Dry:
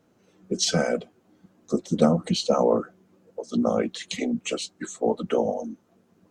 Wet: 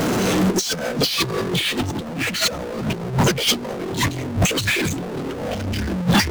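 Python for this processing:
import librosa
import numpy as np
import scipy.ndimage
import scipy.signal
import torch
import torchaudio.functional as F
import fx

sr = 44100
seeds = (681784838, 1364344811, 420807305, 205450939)

y = fx.echo_pitch(x, sr, ms=250, semitones=-5, count=3, db_per_echo=-3.0)
y = fx.power_curve(y, sr, exponent=0.35)
y = fx.over_compress(y, sr, threshold_db=-20.0, ratio=-0.5)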